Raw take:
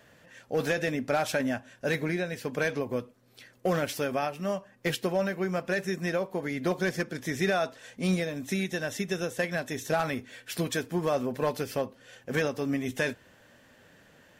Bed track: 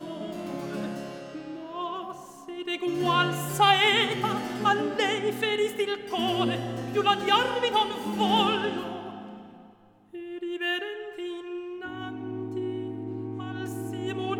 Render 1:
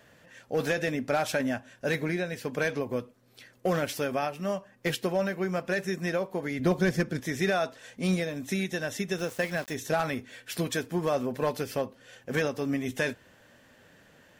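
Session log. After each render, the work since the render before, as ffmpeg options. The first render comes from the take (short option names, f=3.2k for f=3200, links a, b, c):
-filter_complex "[0:a]asettb=1/sr,asplit=3[a][b][c];[a]atrim=end=6.594[d];[b]atrim=start=6.59:end=7.2,asetpts=PTS-STARTPTS,afade=t=in:d=0.004:c=qsin,afade=t=out:st=0.606:d=0.004:c=qsin,lowshelf=f=210:g=11[e];[c]atrim=start=7.196[f];[d][e]acrossfade=d=0.004:c1=hsin:c2=qsin[g];[g][f]acrossfade=d=0.004:c1=qsin:c2=hsin,asplit=3[h][i][j];[h]afade=t=out:st=9.17:d=0.02[k];[i]aeval=exprs='val(0)*gte(abs(val(0)),0.00944)':c=same,afade=t=in:st=9.17:d=0.02,afade=t=out:st=9.73:d=0.02[l];[j]afade=t=in:st=9.73:d=0.02[m];[k][l][m]amix=inputs=3:normalize=0"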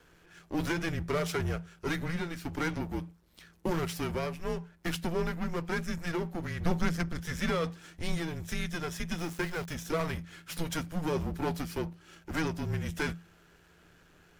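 -af "aeval=exprs='if(lt(val(0),0),0.251*val(0),val(0))':c=same,afreqshift=-170"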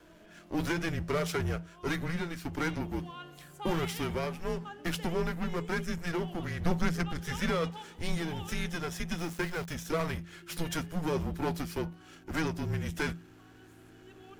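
-filter_complex "[1:a]volume=-22.5dB[a];[0:a][a]amix=inputs=2:normalize=0"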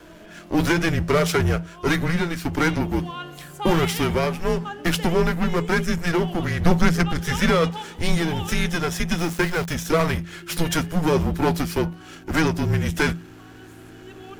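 -af "volume=11.5dB"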